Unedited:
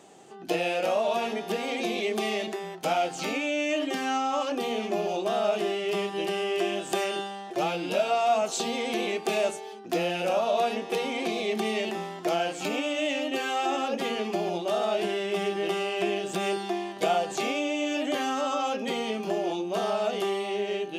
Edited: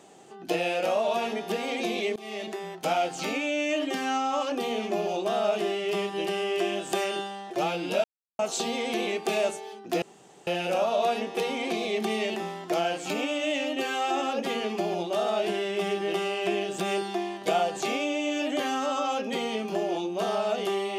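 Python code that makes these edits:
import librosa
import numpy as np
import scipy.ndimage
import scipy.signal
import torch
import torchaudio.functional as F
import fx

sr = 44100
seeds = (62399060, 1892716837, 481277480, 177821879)

y = fx.edit(x, sr, fx.fade_in_from(start_s=2.16, length_s=0.62, curve='qsin', floor_db=-24.0),
    fx.silence(start_s=8.04, length_s=0.35),
    fx.insert_room_tone(at_s=10.02, length_s=0.45), tone=tone)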